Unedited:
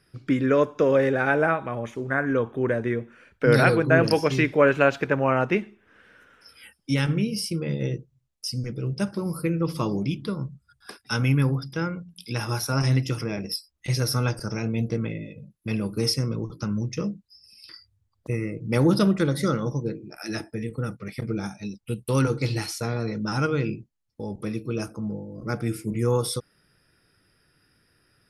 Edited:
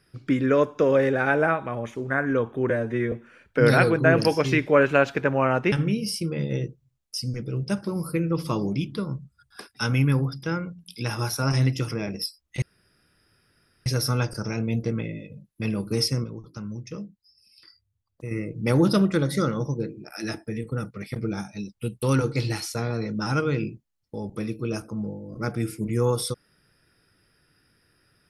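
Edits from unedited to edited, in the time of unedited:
2.70–2.98 s: stretch 1.5×
5.58–7.02 s: delete
13.92 s: insert room tone 1.24 s
16.30–18.37 s: gain -7.5 dB

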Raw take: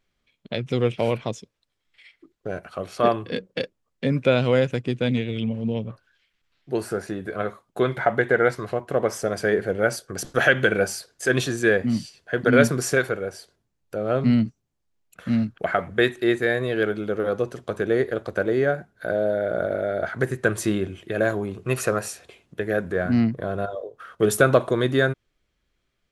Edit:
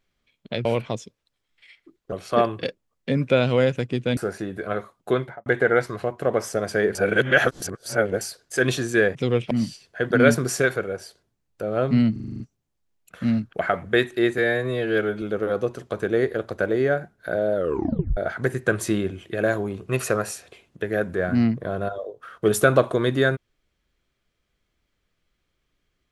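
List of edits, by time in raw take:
0.65–1.01 s: move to 11.84 s
2.48–2.79 s: delete
3.30–3.58 s: delete
5.12–6.86 s: delete
7.80–8.15 s: studio fade out
9.64–10.90 s: reverse
14.45 s: stutter 0.04 s, 8 plays
16.43–16.99 s: stretch 1.5×
19.32 s: tape stop 0.62 s

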